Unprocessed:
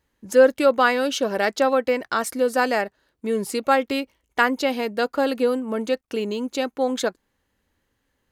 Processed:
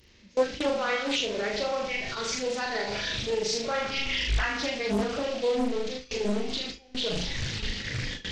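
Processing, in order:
linear delta modulator 32 kbit/s, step −18 dBFS
flutter between parallel walls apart 6.7 metres, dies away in 0.99 s
in parallel at −1 dB: brickwall limiter −12 dBFS, peak gain reduction 11.5 dB
on the sum: dynamic equaliser 320 Hz, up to −5 dB, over −26 dBFS, Q 1.4
noise reduction from a noise print of the clip's start 12 dB
flat-topped bell 1,000 Hz −11.5 dB
noise gate with hold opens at −16 dBFS
highs frequency-modulated by the lows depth 0.9 ms
level −6.5 dB

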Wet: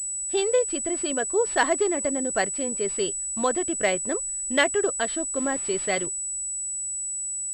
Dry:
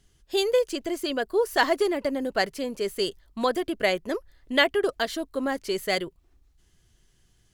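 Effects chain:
0:05.36–0:06.06: bit-depth reduction 8 bits, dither triangular
switching amplifier with a slow clock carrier 7,900 Hz

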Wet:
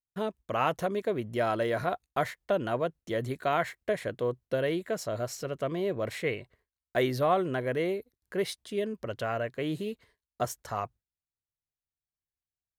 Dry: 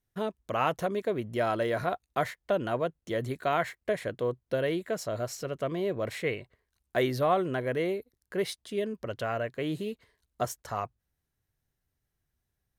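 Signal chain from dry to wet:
noise gate with hold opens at −52 dBFS

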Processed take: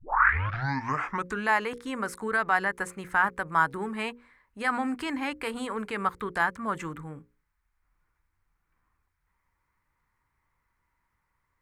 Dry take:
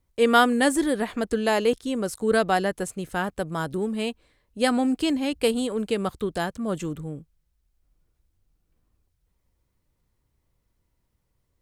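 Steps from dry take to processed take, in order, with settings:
turntable start at the beginning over 1.46 s
brickwall limiter −17.5 dBFS, peak gain reduction 9.5 dB
flat-topped bell 1,400 Hz +16 dB
mains-hum notches 60/120/180/240/300/360/420/480/540 Hz
level −6.5 dB

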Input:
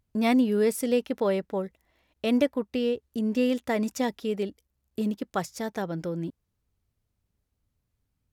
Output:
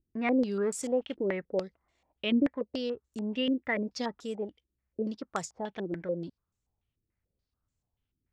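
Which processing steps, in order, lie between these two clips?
0:00.66–0:01.25: one scale factor per block 5 bits
pitch vibrato 1.2 Hz 75 cents
low-pass on a step sequencer 6.9 Hz 340–7,400 Hz
level −7.5 dB

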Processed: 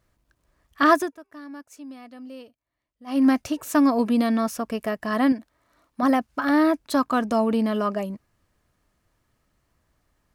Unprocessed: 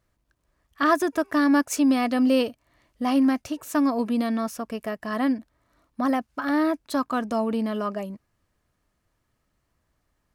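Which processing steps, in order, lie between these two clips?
0:00.92–0:03.28: duck −23.5 dB, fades 0.22 s
0:05.32–0:06.03: low-shelf EQ 250 Hz −8.5 dB
level +3.5 dB

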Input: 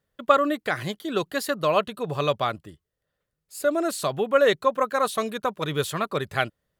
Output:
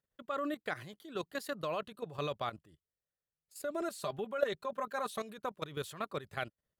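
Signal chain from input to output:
0:03.74–0:05.20: comb filter 5 ms, depth 61%
output level in coarse steps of 13 dB
level −9 dB

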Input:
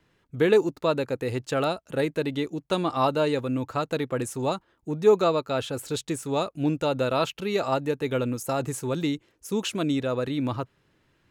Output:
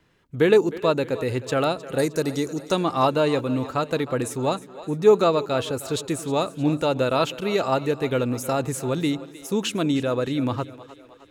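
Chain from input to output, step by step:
0:01.98–0:02.72: high shelf with overshoot 4,200 Hz +9.5 dB, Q 3
on a send: echo with a time of its own for lows and highs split 330 Hz, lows 90 ms, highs 310 ms, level −16 dB
on the sum: level +3 dB

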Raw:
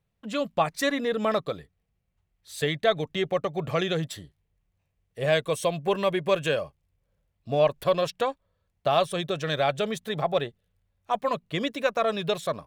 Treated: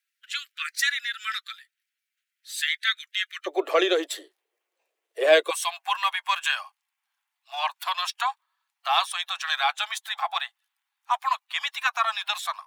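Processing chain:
spectral magnitudes quantised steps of 15 dB
Butterworth high-pass 1,400 Hz 72 dB per octave, from 0:03.46 320 Hz, from 0:05.49 800 Hz
level +6.5 dB

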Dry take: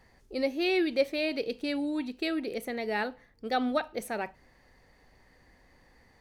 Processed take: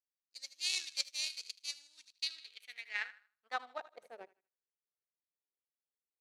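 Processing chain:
high-pass filter 150 Hz 6 dB per octave
tilt shelving filter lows −10 dB, about 1,300 Hz
on a send: feedback echo with a high-pass in the loop 78 ms, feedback 57%, high-pass 720 Hz, level −7.5 dB
on the sum: power curve on the samples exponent 2
band-pass filter sweep 5,900 Hz → 410 Hz, 0:02.08–0:04.35
amplitude modulation by smooth noise, depth 60%
level +9.5 dB

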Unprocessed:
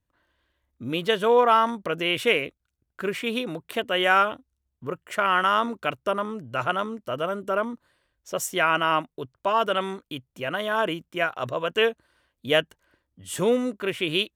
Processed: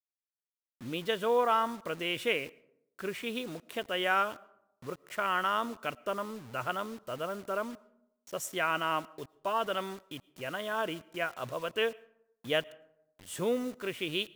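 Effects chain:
bit reduction 7 bits
convolution reverb RT60 0.85 s, pre-delay 70 ms, DRR 24 dB
level −8.5 dB

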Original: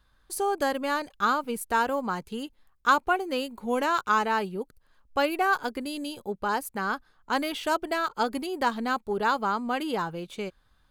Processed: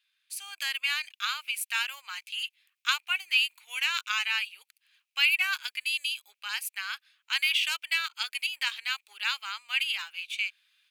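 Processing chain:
four-pole ladder high-pass 2,300 Hz, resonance 70%
automatic gain control gain up to 8.5 dB
level +6 dB

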